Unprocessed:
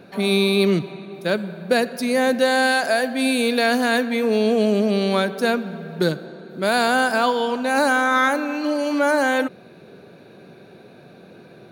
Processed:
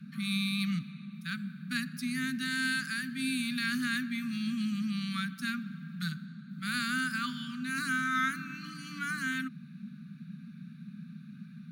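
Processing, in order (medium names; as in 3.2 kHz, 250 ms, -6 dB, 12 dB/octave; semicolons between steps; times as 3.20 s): Chebyshev shaper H 3 -25 dB, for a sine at -5 dBFS; band noise 150–230 Hz -36 dBFS; Chebyshev band-stop 260–1200 Hz, order 5; trim -9 dB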